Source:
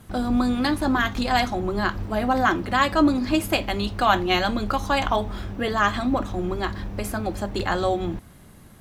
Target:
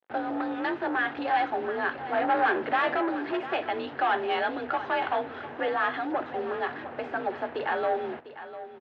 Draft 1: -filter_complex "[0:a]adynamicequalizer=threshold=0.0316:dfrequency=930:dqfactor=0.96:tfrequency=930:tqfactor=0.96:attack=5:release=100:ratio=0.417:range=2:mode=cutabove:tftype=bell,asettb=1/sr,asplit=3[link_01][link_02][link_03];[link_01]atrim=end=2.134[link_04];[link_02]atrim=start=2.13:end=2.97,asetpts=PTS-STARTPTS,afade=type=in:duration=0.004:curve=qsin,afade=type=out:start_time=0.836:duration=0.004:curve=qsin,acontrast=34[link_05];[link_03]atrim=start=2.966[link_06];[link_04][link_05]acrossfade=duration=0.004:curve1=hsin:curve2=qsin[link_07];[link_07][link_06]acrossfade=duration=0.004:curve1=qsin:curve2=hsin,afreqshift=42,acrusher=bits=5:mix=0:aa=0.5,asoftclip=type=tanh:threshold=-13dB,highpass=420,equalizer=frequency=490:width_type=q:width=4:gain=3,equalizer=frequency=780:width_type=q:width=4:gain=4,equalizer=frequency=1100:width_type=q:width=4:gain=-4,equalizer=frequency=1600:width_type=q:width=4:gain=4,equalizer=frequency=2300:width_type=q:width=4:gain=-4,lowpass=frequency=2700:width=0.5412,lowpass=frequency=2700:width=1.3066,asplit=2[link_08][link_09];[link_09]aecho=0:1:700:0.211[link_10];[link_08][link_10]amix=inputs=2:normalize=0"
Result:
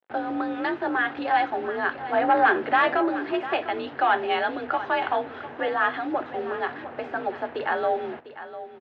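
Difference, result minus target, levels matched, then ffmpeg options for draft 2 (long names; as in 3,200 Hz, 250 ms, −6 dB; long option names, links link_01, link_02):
soft clipping: distortion −7 dB
-filter_complex "[0:a]adynamicequalizer=threshold=0.0316:dfrequency=930:dqfactor=0.96:tfrequency=930:tqfactor=0.96:attack=5:release=100:ratio=0.417:range=2:mode=cutabove:tftype=bell,asettb=1/sr,asplit=3[link_01][link_02][link_03];[link_01]atrim=end=2.134[link_04];[link_02]atrim=start=2.13:end=2.97,asetpts=PTS-STARTPTS,afade=type=in:duration=0.004:curve=qsin,afade=type=out:start_time=0.836:duration=0.004:curve=qsin,acontrast=34[link_05];[link_03]atrim=start=2.966[link_06];[link_04][link_05]acrossfade=duration=0.004:curve1=hsin:curve2=qsin[link_07];[link_07][link_06]acrossfade=duration=0.004:curve1=qsin:curve2=hsin,afreqshift=42,acrusher=bits=5:mix=0:aa=0.5,asoftclip=type=tanh:threshold=-21dB,highpass=420,equalizer=frequency=490:width_type=q:width=4:gain=3,equalizer=frequency=780:width_type=q:width=4:gain=4,equalizer=frequency=1100:width_type=q:width=4:gain=-4,equalizer=frequency=1600:width_type=q:width=4:gain=4,equalizer=frequency=2300:width_type=q:width=4:gain=-4,lowpass=frequency=2700:width=0.5412,lowpass=frequency=2700:width=1.3066,asplit=2[link_08][link_09];[link_09]aecho=0:1:700:0.211[link_10];[link_08][link_10]amix=inputs=2:normalize=0"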